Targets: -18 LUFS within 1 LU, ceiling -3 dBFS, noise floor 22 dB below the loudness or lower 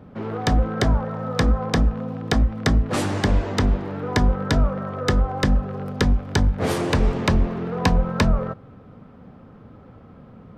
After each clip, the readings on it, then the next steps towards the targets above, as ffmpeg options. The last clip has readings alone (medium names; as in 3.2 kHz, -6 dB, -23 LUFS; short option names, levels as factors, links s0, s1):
loudness -22.5 LUFS; peak level -8.0 dBFS; loudness target -18.0 LUFS
-> -af "volume=1.68"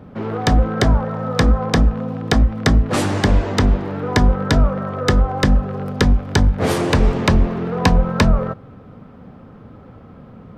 loudness -18.0 LUFS; peak level -3.5 dBFS; noise floor -42 dBFS